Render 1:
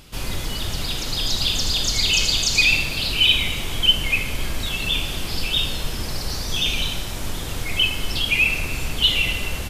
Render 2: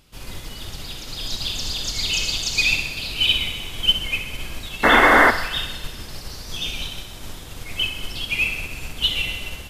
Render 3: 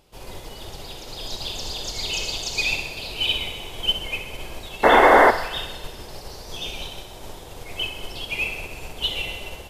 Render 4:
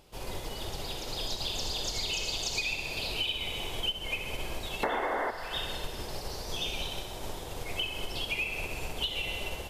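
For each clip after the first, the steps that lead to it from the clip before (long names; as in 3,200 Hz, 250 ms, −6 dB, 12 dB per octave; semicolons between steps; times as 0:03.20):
sound drawn into the spectrogram noise, 0:04.83–0:05.31, 210–2,200 Hz −12 dBFS; feedback echo with a high-pass in the loop 64 ms, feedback 78%, high-pass 420 Hz, level −10 dB; expander for the loud parts 1.5 to 1, over −28 dBFS; level −1 dB
flat-topped bell 590 Hz +9 dB; level −4.5 dB
downward compressor 8 to 1, threshold −29 dBFS, peak gain reduction 19.5 dB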